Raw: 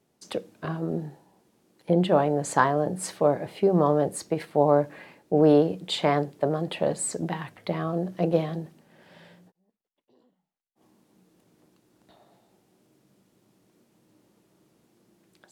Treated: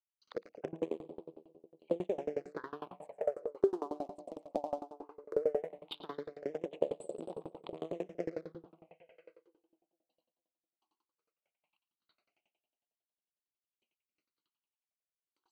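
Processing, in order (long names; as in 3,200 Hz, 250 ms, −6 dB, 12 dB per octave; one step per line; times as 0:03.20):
adaptive Wiener filter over 25 samples
high-shelf EQ 6,000 Hz −3.5 dB
in parallel at −5 dB: bit reduction 4 bits
on the sum: downward compressor 8 to 1, threshold −28 dBFS, peak gain reduction 17.5 dB
tilt shelving filter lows −9 dB, about 690 Hz
noise gate with hold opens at −59 dBFS
envelope filter 440–3,500 Hz, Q 2.4, down, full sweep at −37 dBFS
on a send: echo with a time of its own for lows and highs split 710 Hz, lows 229 ms, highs 111 ms, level −10.5 dB
on the sum: all-pass phaser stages 6, 0.17 Hz, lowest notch 110–1,800 Hz
tremolo with a ramp in dB decaying 11 Hz, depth 28 dB
level +13 dB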